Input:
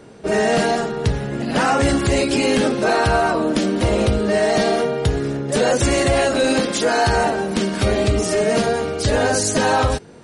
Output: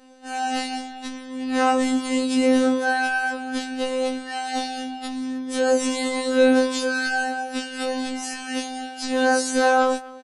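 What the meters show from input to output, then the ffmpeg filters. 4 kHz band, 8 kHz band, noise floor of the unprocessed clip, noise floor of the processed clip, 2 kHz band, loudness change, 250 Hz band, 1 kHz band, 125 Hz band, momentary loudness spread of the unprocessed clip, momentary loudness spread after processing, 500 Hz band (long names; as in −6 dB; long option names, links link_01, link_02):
−5.0 dB, −6.0 dB, −26 dBFS, −38 dBFS, −2.0 dB, −4.5 dB, −2.5 dB, −3.5 dB, below −30 dB, 5 LU, 12 LU, −6.0 dB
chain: -filter_complex "[0:a]asplit=2[link_01][link_02];[link_02]adelay=250,highpass=300,lowpass=3400,asoftclip=type=hard:threshold=-15.5dB,volume=-19dB[link_03];[link_01][link_03]amix=inputs=2:normalize=0,afftfilt=real='hypot(re,im)*cos(PI*b)':imag='0':win_size=2048:overlap=0.75,afftfilt=real='re*3.46*eq(mod(b,12),0)':imag='im*3.46*eq(mod(b,12),0)':win_size=2048:overlap=0.75,volume=-5dB"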